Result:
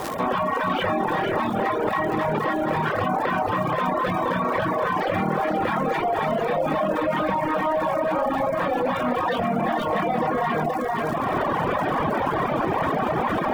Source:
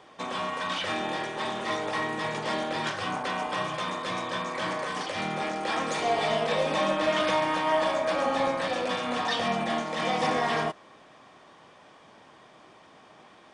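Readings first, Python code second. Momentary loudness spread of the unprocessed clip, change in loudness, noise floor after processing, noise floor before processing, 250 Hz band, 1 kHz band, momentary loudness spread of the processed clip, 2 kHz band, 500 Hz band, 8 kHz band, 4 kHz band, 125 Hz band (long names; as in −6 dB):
6 LU, +4.5 dB, −26 dBFS, −54 dBFS, +8.5 dB, +6.5 dB, 1 LU, +3.0 dB, +6.0 dB, can't be measured, −4.5 dB, +10.5 dB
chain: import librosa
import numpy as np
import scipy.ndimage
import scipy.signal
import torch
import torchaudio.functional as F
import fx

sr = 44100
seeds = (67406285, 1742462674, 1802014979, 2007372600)

p1 = fx.recorder_agc(x, sr, target_db=-17.0, rise_db_per_s=38.0, max_gain_db=30)
p2 = scipy.signal.sosfilt(scipy.signal.butter(2, 1500.0, 'lowpass', fs=sr, output='sos'), p1)
p3 = 10.0 ** (-28.5 / 20.0) * np.tanh(p2 / 10.0 ** (-28.5 / 20.0))
p4 = p2 + (p3 * librosa.db_to_amplitude(-10.0))
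p5 = fx.low_shelf(p4, sr, hz=110.0, db=6.5)
p6 = fx.quant_dither(p5, sr, seeds[0], bits=10, dither='none')
p7 = fx.dmg_crackle(p6, sr, seeds[1], per_s=170.0, level_db=-37.0)
p8 = fx.dereverb_blind(p7, sr, rt60_s=0.6)
p9 = p8 + 10.0 ** (-5.5 / 20.0) * np.pad(p8, (int(475 * sr / 1000.0), 0))[:len(p8)]
p10 = fx.dereverb_blind(p9, sr, rt60_s=0.88)
y = fx.env_flatten(p10, sr, amount_pct=70)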